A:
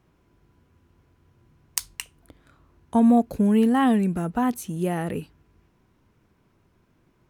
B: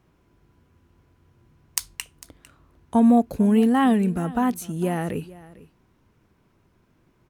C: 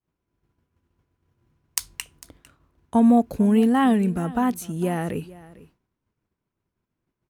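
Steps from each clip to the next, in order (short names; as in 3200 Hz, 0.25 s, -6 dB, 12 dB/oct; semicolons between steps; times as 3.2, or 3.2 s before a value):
echo 0.451 s -19.5 dB; gain +1 dB
expander -50 dBFS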